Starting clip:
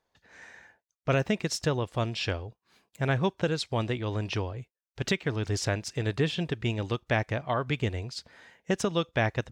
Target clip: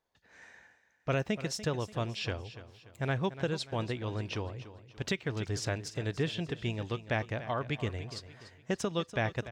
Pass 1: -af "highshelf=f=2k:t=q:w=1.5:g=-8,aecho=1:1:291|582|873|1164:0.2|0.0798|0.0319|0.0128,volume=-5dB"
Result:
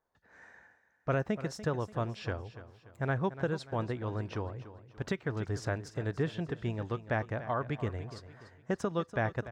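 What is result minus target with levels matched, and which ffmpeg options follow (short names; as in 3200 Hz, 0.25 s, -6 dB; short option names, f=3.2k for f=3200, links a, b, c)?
4000 Hz band -9.5 dB
-af "aecho=1:1:291|582|873|1164:0.2|0.0798|0.0319|0.0128,volume=-5dB"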